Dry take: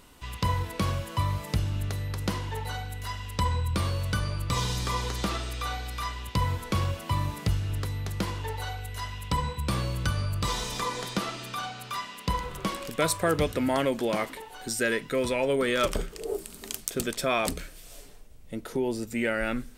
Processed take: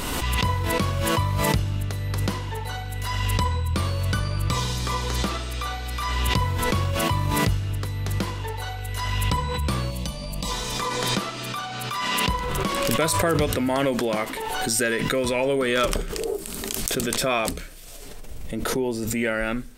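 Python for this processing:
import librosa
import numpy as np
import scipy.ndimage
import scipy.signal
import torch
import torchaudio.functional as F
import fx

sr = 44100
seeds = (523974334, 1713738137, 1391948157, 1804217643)

y = fx.fixed_phaser(x, sr, hz=380.0, stages=6, at=(9.9, 10.5), fade=0.02)
y = fx.pre_swell(y, sr, db_per_s=21.0)
y = y * 10.0 ** (2.5 / 20.0)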